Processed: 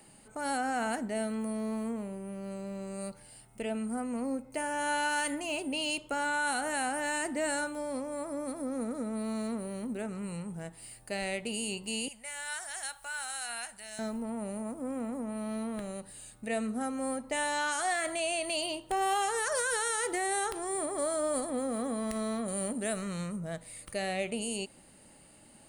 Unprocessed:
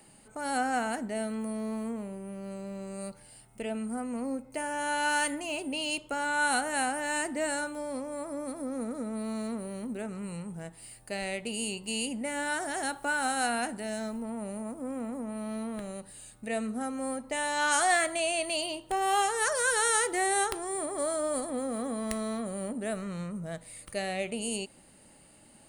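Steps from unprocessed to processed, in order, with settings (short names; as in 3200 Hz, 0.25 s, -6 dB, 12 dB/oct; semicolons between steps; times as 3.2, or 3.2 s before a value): 22.48–23.36 bell 9100 Hz +8 dB 2.9 oct; limiter -22 dBFS, peak gain reduction 9 dB; 12.08–13.99 passive tone stack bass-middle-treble 10-0-10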